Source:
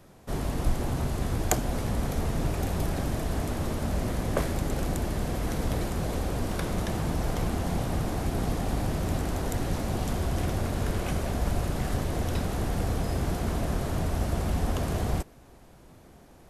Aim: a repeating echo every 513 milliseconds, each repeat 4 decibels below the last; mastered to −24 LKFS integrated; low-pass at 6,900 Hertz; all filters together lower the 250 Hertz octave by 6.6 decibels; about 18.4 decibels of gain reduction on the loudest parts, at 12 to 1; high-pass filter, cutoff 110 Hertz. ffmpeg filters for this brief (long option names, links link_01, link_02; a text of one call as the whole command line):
ffmpeg -i in.wav -af "highpass=110,lowpass=6900,equalizer=frequency=250:width_type=o:gain=-9,acompressor=threshold=-42dB:ratio=12,aecho=1:1:513|1026|1539|2052|2565|3078|3591|4104|4617:0.631|0.398|0.25|0.158|0.0994|0.0626|0.0394|0.0249|0.0157,volume=20.5dB" out.wav